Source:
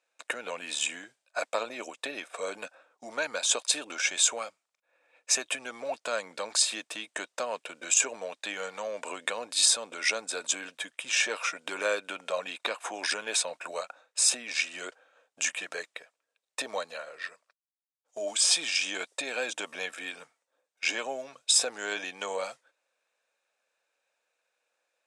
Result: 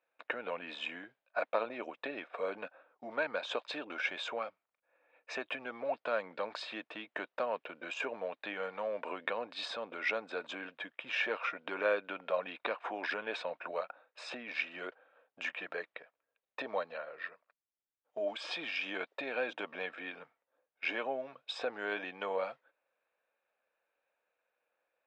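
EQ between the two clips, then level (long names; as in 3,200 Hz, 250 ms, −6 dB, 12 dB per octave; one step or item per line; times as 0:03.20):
moving average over 4 samples
high-frequency loss of the air 410 metres
0.0 dB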